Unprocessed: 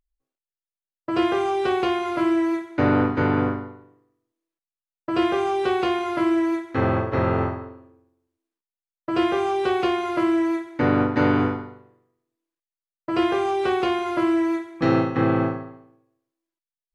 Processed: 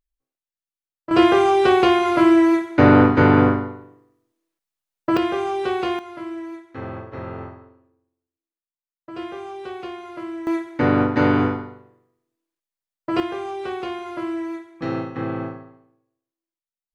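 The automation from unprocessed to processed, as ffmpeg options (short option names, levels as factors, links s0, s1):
-af "asetnsamples=n=441:p=0,asendcmd='1.11 volume volume 7dB;5.17 volume volume -1dB;5.99 volume volume -11dB;10.47 volume volume 2dB;13.2 volume volume -6.5dB',volume=0.708"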